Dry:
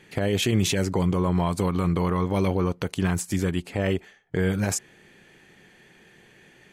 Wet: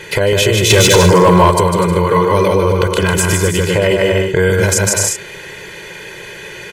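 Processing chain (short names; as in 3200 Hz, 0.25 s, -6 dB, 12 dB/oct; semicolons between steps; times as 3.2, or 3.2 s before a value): on a send: bouncing-ball echo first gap 0.15 s, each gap 0.65×, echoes 5; on the sum: compressor 6:1, threshold -28 dBFS, peak gain reduction 12.5 dB; low shelf 310 Hz -6.5 dB; comb 2 ms, depth 92%; 0.7–1.51 sample leveller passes 2; maximiser +21.5 dB; gain -1 dB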